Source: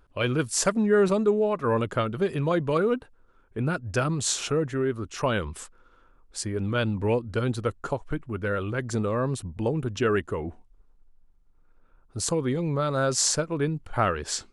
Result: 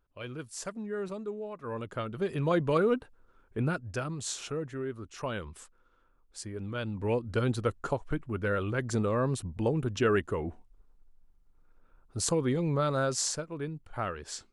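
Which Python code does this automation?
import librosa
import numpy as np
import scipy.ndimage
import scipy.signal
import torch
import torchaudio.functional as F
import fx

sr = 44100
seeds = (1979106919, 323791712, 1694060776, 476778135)

y = fx.gain(x, sr, db=fx.line((1.56, -15.0), (2.54, -2.0), (3.62, -2.0), (4.03, -9.5), (6.83, -9.5), (7.3, -2.0), (12.88, -2.0), (13.41, -10.0)))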